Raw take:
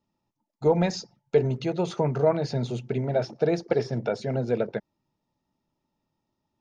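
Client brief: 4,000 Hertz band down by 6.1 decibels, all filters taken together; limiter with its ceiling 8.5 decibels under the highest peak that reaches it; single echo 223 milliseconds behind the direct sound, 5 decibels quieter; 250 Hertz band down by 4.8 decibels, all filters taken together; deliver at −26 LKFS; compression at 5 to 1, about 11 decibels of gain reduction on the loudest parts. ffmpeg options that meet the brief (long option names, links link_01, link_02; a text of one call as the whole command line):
ffmpeg -i in.wav -af "equalizer=frequency=250:width_type=o:gain=-8,equalizer=frequency=4000:width_type=o:gain=-8,acompressor=threshold=-30dB:ratio=5,alimiter=level_in=2.5dB:limit=-24dB:level=0:latency=1,volume=-2.5dB,aecho=1:1:223:0.562,volume=10.5dB" out.wav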